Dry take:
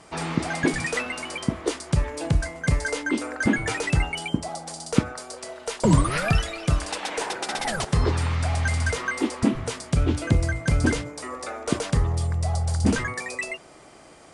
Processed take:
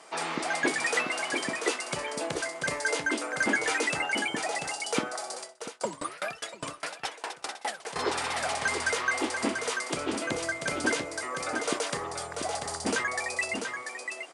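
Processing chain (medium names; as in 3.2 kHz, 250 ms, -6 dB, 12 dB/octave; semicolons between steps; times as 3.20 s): high-pass 450 Hz 12 dB/octave; delay 689 ms -6 dB; 5.40–7.96 s: sawtooth tremolo in dB decaying 4.9 Hz, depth 27 dB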